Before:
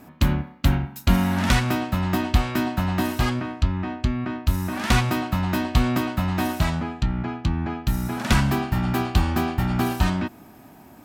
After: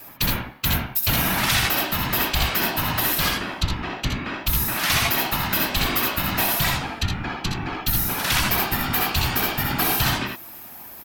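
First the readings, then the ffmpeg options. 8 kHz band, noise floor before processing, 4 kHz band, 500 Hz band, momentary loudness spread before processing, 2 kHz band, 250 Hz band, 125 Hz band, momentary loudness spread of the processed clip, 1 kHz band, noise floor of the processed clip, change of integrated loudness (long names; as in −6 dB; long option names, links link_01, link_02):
+9.5 dB, −48 dBFS, +8.5 dB, −0.5 dB, 6 LU, +5.5 dB, −6.0 dB, −5.0 dB, 8 LU, +1.5 dB, −40 dBFS, +2.5 dB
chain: -af "equalizer=frequency=125:width_type=o:width=1:gain=-5,equalizer=frequency=250:width_type=o:width=1:gain=-5,equalizer=frequency=8000:width_type=o:width=1:gain=-9,afftfilt=real='hypot(re,im)*cos(2*PI*random(0))':imag='hypot(re,im)*sin(2*PI*random(1))':win_size=512:overlap=0.75,aecho=1:1:64|80:0.422|0.447,crystalizer=i=8.5:c=0,alimiter=level_in=13dB:limit=-1dB:release=50:level=0:latency=1,volume=-9dB"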